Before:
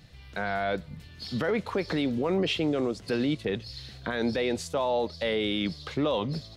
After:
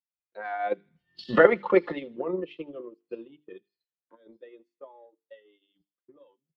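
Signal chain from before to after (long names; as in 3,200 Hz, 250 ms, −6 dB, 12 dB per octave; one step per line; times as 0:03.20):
source passing by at 0:01.34, 12 m/s, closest 4.4 metres
noise reduction from a noise print of the clip's start 16 dB
three-way crossover with the lows and the highs turned down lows −23 dB, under 250 Hz, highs −23 dB, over 2,800 Hz
mains-hum notches 50/100/150/200/250/300/350/400/450 Hz
comb filter 5.7 ms, depth 53%
transient designer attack +9 dB, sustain −8 dB
high-shelf EQ 6,000 Hz −9 dB
delay with a high-pass on its return 80 ms, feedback 54%, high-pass 2,600 Hz, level −21.5 dB
multiband upward and downward expander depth 70%
level +2.5 dB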